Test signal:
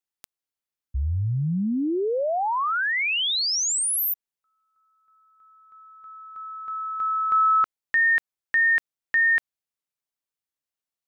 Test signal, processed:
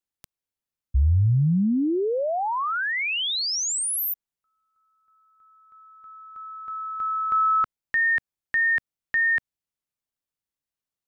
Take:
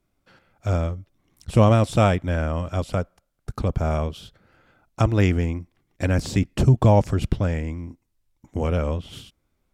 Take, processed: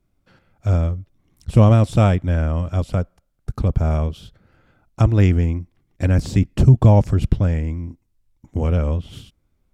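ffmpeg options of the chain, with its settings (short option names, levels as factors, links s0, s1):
-af "lowshelf=f=250:g=9,volume=0.794"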